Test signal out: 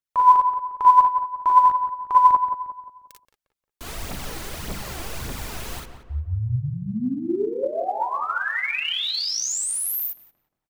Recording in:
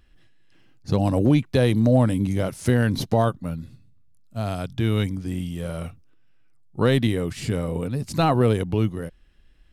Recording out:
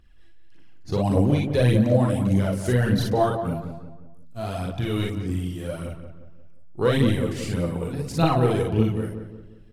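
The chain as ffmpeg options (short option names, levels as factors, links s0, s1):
-filter_complex "[0:a]asplit=2[s0][s1];[s1]aecho=0:1:41|56:0.668|0.631[s2];[s0][s2]amix=inputs=2:normalize=0,aphaser=in_gain=1:out_gain=1:delay=3.1:decay=0.53:speed=1.7:type=triangular,asplit=2[s3][s4];[s4]adelay=177,lowpass=f=1800:p=1,volume=0.398,asplit=2[s5][s6];[s6]adelay=177,lowpass=f=1800:p=1,volume=0.44,asplit=2[s7][s8];[s8]adelay=177,lowpass=f=1800:p=1,volume=0.44,asplit=2[s9][s10];[s10]adelay=177,lowpass=f=1800:p=1,volume=0.44,asplit=2[s11][s12];[s12]adelay=177,lowpass=f=1800:p=1,volume=0.44[s13];[s5][s7][s9][s11][s13]amix=inputs=5:normalize=0[s14];[s3][s14]amix=inputs=2:normalize=0,volume=0.562"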